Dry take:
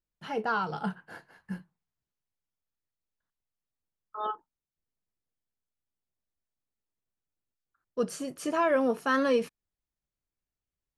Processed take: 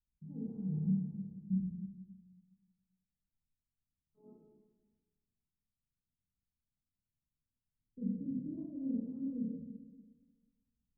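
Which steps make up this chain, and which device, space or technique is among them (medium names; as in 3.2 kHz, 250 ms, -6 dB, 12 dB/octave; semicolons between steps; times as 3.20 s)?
club heard from the street (peak limiter -25.5 dBFS, peak gain reduction 10.5 dB; low-pass 210 Hz 24 dB/octave; reverberation RT60 1.4 s, pre-delay 21 ms, DRR -6.5 dB)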